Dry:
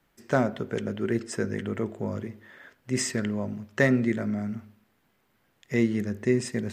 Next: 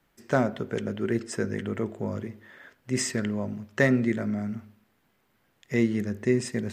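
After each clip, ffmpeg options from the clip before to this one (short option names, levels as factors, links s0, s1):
-af anull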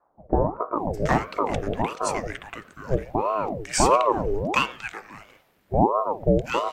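-filter_complex "[0:a]acrossover=split=680[s0][s1];[s1]adelay=760[s2];[s0][s2]amix=inputs=2:normalize=0,aeval=exprs='val(0)*sin(2*PI*530*n/s+530*0.65/1.5*sin(2*PI*1.5*n/s))':c=same,volume=2.37"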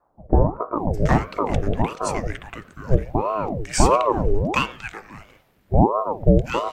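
-af "lowshelf=f=200:g=10.5"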